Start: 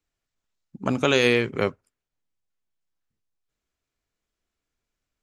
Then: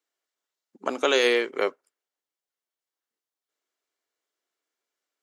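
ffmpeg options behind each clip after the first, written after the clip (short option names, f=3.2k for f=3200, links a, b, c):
-af "highpass=f=340:w=0.5412,highpass=f=340:w=1.3066,bandreject=f=2.5k:w=13"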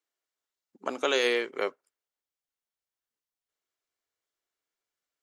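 -af "asubboost=boost=3.5:cutoff=150,volume=-4dB"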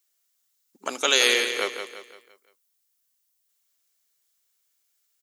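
-af "crystalizer=i=7.5:c=0,aecho=1:1:171|342|513|684|855:0.398|0.171|0.0736|0.0317|0.0136,volume=-1.5dB"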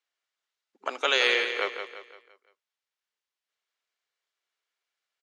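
-af "highpass=440,lowpass=2.8k"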